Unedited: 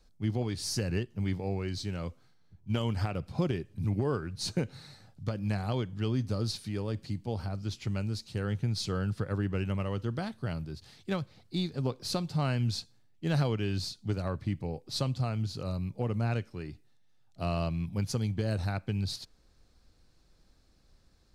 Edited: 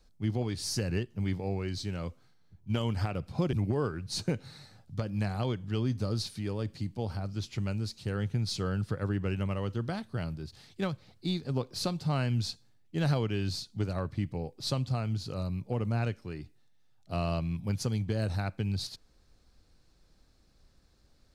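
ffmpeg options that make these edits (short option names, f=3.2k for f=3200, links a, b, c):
-filter_complex "[0:a]asplit=2[a][b];[a]atrim=end=3.532[c];[b]atrim=start=3.818[d];[c][d]acrossfade=d=0.004:c1=hsin:c2=hsin"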